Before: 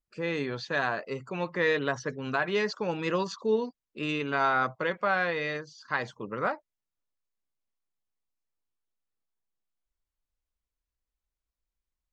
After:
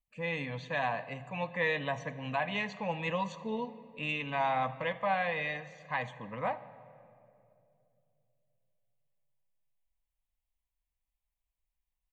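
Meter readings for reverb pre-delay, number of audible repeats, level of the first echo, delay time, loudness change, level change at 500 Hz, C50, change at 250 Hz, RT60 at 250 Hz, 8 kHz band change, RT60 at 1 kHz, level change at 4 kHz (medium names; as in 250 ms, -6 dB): 4 ms, 1, -22.0 dB, 77 ms, -4.5 dB, -6.0 dB, 14.5 dB, -6.0 dB, 3.1 s, no reading, 2.3 s, -4.0 dB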